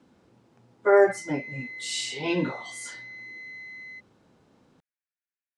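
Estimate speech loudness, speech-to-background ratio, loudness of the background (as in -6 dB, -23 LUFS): -25.5 LUFS, 14.5 dB, -40.0 LUFS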